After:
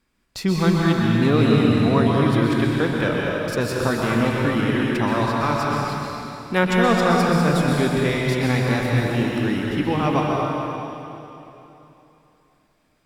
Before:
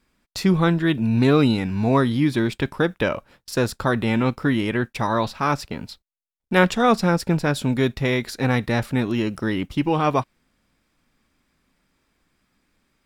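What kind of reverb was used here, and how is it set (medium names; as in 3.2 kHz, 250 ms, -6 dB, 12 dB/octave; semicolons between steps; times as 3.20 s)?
plate-style reverb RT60 3.1 s, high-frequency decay 0.95×, pre-delay 110 ms, DRR -3 dB; trim -3 dB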